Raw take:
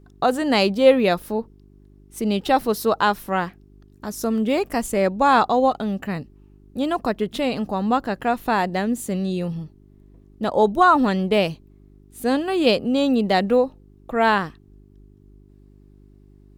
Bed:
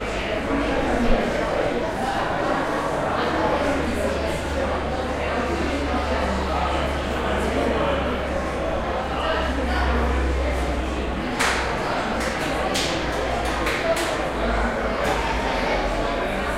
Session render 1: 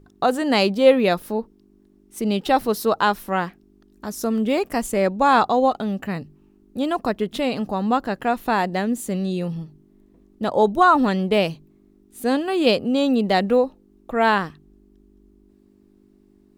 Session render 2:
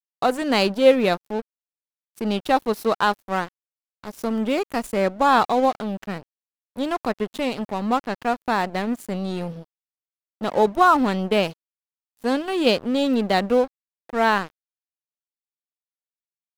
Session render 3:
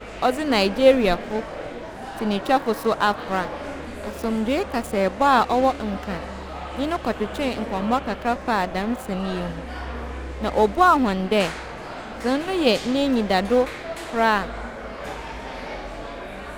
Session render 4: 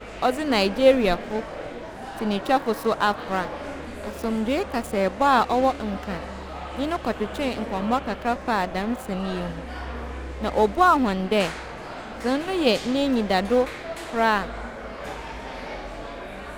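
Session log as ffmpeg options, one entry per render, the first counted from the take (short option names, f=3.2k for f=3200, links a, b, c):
-af "bandreject=f=50:t=h:w=4,bandreject=f=100:t=h:w=4,bandreject=f=150:t=h:w=4"
-af "aeval=exprs='sgn(val(0))*max(abs(val(0))-0.0251,0)':c=same"
-filter_complex "[1:a]volume=-10.5dB[a];[0:a][a]amix=inputs=2:normalize=0"
-af "volume=-1.5dB"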